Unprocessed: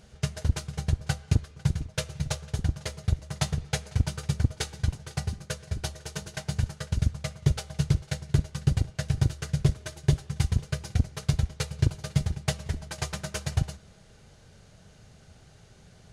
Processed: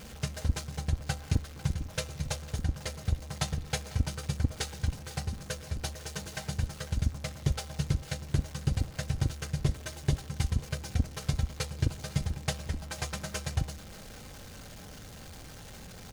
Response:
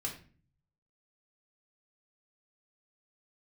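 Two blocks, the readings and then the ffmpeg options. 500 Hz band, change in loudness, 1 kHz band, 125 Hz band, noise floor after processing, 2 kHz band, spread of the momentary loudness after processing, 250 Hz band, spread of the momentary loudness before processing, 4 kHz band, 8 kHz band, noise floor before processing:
-2.5 dB, -4.0 dB, -1.0 dB, -5.0 dB, -47 dBFS, -2.0 dB, 14 LU, -4.0 dB, 7 LU, -2.0 dB, -1.5 dB, -55 dBFS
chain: -af "aeval=exprs='val(0)+0.5*0.0112*sgn(val(0))':c=same,aecho=1:1:3.8:0.32,volume=-3.5dB"

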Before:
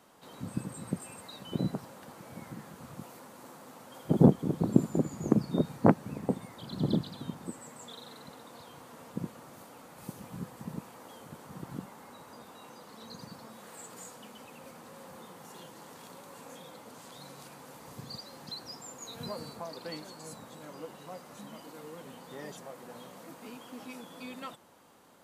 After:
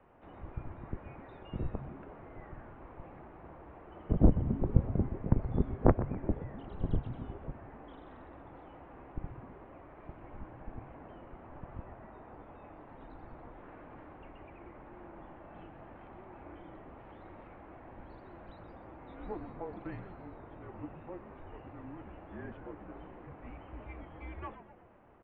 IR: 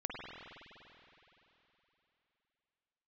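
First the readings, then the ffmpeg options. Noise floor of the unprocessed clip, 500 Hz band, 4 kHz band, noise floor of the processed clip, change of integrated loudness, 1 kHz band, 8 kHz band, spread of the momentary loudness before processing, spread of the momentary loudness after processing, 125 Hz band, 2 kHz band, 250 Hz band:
-52 dBFS, -4.5 dB, under -20 dB, -53 dBFS, -3.5 dB, -3.5 dB, under -30 dB, 21 LU, 20 LU, -1.0 dB, -4.0 dB, -6.5 dB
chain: -filter_complex "[0:a]highpass=f=200:t=q:w=0.5412,highpass=f=200:t=q:w=1.307,lowpass=f=2.7k:t=q:w=0.5176,lowpass=f=2.7k:t=q:w=0.7071,lowpass=f=2.7k:t=q:w=1.932,afreqshift=-190,aemphasis=mode=reproduction:type=75kf,asplit=7[a][b][c][d][e][f][g];[b]adelay=125,afreqshift=-140,volume=-11dB[h];[c]adelay=250,afreqshift=-280,volume=-16dB[i];[d]adelay=375,afreqshift=-420,volume=-21.1dB[j];[e]adelay=500,afreqshift=-560,volume=-26.1dB[k];[f]adelay=625,afreqshift=-700,volume=-31.1dB[l];[g]adelay=750,afreqshift=-840,volume=-36.2dB[m];[a][h][i][j][k][l][m]amix=inputs=7:normalize=0"

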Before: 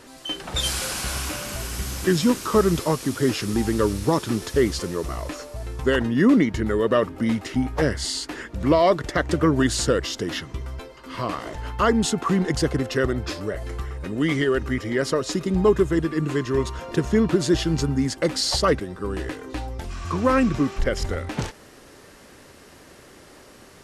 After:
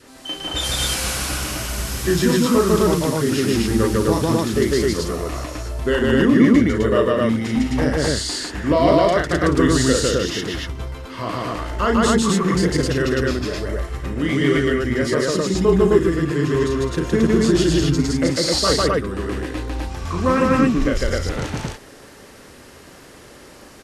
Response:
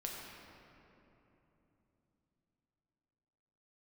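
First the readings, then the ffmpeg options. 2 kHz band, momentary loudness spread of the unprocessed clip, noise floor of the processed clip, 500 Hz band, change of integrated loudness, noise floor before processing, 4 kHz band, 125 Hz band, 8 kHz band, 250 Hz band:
+4.5 dB, 12 LU, -43 dBFS, +4.0 dB, +4.0 dB, -48 dBFS, +4.5 dB, +4.5 dB, +4.5 dB, +4.5 dB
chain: -af "aecho=1:1:34.99|151.6|207|259.5:0.631|1|0.355|1,adynamicequalizer=threshold=0.02:dfrequency=860:dqfactor=2.5:tfrequency=860:tqfactor=2.5:attack=5:release=100:ratio=0.375:range=2:mode=cutabove:tftype=bell,volume=-1dB"

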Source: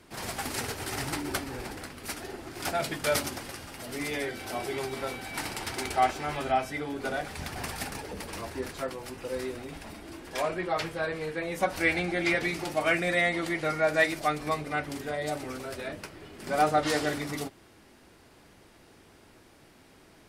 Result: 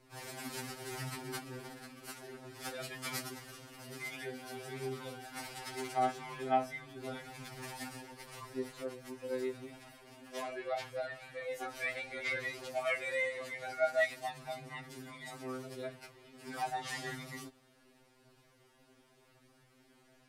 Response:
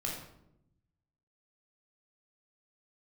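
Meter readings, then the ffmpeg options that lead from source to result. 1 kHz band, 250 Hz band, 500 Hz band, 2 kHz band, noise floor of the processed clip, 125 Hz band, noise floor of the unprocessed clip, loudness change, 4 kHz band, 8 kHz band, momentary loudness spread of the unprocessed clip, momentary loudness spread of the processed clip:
-9.0 dB, -11.5 dB, -8.0 dB, -9.0 dB, -67 dBFS, -10.0 dB, -57 dBFS, -9.0 dB, -9.5 dB, -9.5 dB, 13 LU, 15 LU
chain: -af "aphaser=in_gain=1:out_gain=1:delay=4.6:decay=0.25:speed=0.82:type=triangular,afftfilt=real='re*2.45*eq(mod(b,6),0)':imag='im*2.45*eq(mod(b,6),0)':win_size=2048:overlap=0.75,volume=-7.5dB"

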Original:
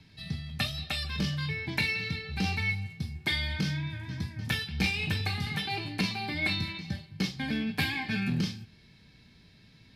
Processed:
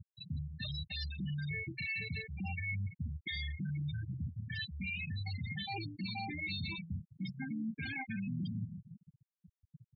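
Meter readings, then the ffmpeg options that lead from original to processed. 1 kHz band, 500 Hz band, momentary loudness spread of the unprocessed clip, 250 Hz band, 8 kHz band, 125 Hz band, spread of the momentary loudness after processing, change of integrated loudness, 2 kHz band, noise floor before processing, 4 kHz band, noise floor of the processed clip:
-8.5 dB, -14.0 dB, 8 LU, -7.5 dB, under -35 dB, -6.0 dB, 5 LU, -8.5 dB, -9.0 dB, -58 dBFS, -10.5 dB, under -85 dBFS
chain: -filter_complex "[0:a]asplit=2[a][b];[b]adelay=172,lowpass=f=4.5k:p=1,volume=-20dB,asplit=2[c][d];[d]adelay=172,lowpass=f=4.5k:p=1,volume=0.45,asplit=2[e][f];[f]adelay=172,lowpass=f=4.5k:p=1,volume=0.45[g];[a][c][e][g]amix=inputs=4:normalize=0,areverse,acompressor=threshold=-42dB:ratio=8,areverse,aeval=exprs='0.0119*(abs(mod(val(0)/0.0119+3,4)-2)-1)':c=same,afftfilt=real='re*gte(hypot(re,im),0.0158)':imag='im*gte(hypot(re,im),0.0158)':win_size=1024:overlap=0.75,volume=7.5dB"

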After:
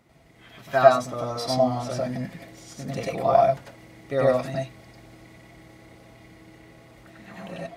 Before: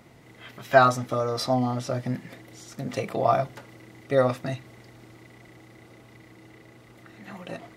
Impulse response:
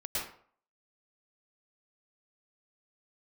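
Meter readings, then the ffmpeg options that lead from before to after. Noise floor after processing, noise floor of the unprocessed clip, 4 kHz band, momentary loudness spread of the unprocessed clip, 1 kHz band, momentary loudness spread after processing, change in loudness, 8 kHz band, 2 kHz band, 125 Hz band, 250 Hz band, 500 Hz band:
-53 dBFS, -52 dBFS, +0.5 dB, 23 LU, +1.0 dB, 20 LU, +1.5 dB, +0.5 dB, -2.5 dB, -1.5 dB, -1.0 dB, +3.5 dB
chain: -filter_complex "[0:a]dynaudnorm=f=280:g=3:m=5dB[a];[1:a]atrim=start_sample=2205,afade=t=out:st=0.16:d=0.01,atrim=end_sample=7497,asetrate=48510,aresample=44100[b];[a][b]afir=irnorm=-1:irlink=0,volume=-2.5dB"

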